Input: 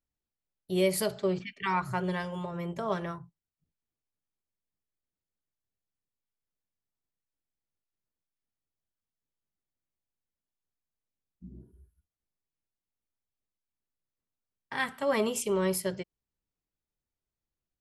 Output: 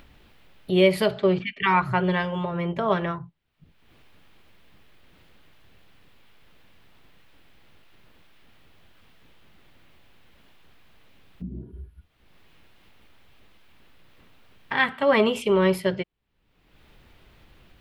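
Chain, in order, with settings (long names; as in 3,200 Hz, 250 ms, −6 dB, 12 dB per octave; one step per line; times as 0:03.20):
upward compression, threshold −36 dBFS
high shelf with overshoot 4,600 Hz −14 dB, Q 1.5
level +8 dB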